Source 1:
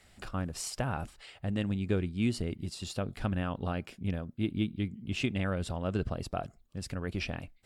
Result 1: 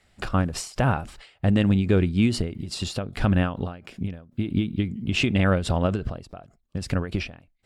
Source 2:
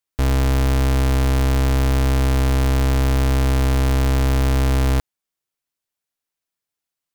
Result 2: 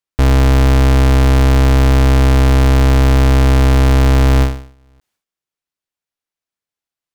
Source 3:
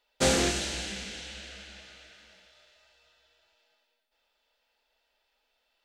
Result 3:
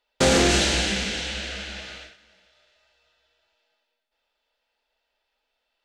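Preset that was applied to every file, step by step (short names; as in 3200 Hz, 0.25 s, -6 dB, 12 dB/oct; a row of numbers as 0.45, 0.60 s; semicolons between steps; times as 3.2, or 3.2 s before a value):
gate -52 dBFS, range -14 dB; high shelf 7700 Hz -8 dB; limiter -22 dBFS; ending taper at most 120 dB/s; normalise peaks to -9 dBFS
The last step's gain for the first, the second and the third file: +13.0, +13.0, +13.0 dB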